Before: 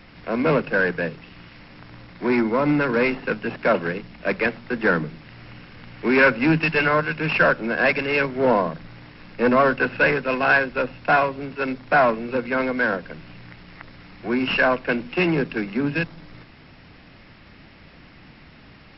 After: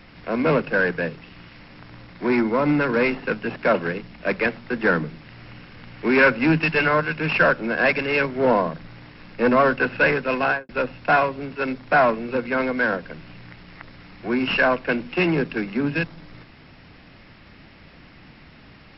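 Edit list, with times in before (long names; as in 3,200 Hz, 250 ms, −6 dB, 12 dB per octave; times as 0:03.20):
0:10.42–0:10.69: fade out and dull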